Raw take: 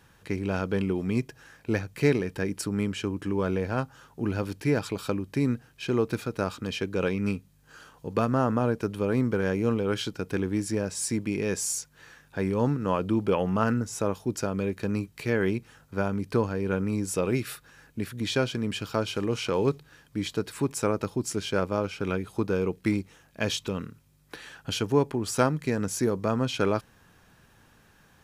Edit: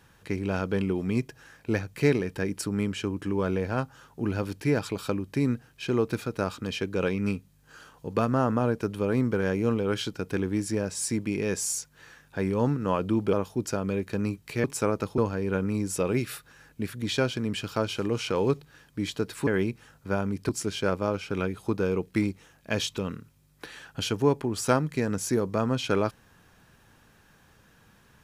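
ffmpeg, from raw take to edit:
-filter_complex "[0:a]asplit=6[s0][s1][s2][s3][s4][s5];[s0]atrim=end=13.332[s6];[s1]atrim=start=14.028:end=15.342[s7];[s2]atrim=start=20.648:end=21.192[s8];[s3]atrim=start=16.358:end=20.652[s9];[s4]atrim=start=15.338:end=16.362[s10];[s5]atrim=start=21.188[s11];[s6][s7]acrossfade=d=0.004:c1=hsin:c2=hsin[s12];[s12][s8]acrossfade=d=0.004:c1=hsin:c2=hsin[s13];[s13][s9]acrossfade=d=0.004:c1=hsin:c2=hsin[s14];[s14][s10]acrossfade=d=0.004:c1=hsin:c2=hsin[s15];[s15][s11]acrossfade=d=0.004:c1=hsin:c2=hsin"

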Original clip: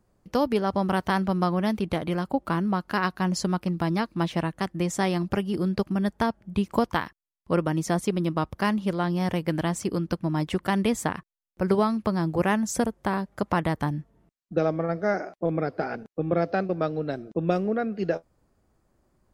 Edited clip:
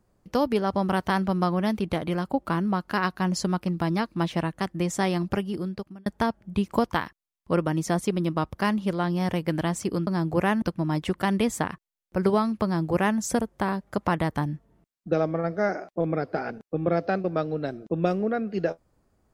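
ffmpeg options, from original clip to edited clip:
-filter_complex "[0:a]asplit=4[s0][s1][s2][s3];[s0]atrim=end=6.06,asetpts=PTS-STARTPTS,afade=t=out:st=5.32:d=0.74[s4];[s1]atrim=start=6.06:end=10.072,asetpts=PTS-STARTPTS,afade=t=in:d=0.004:c=hsin[s5];[s2]atrim=start=12.088:end=12.642[s6];[s3]atrim=start=10.068[s7];[s4][s5]concat=n=2:v=0:a=1[s8];[s8][s6]acrossfade=d=0.004:c1=hsin:c2=hsin[s9];[s9][s7]acrossfade=d=0.004:c1=hsin:c2=hsin"

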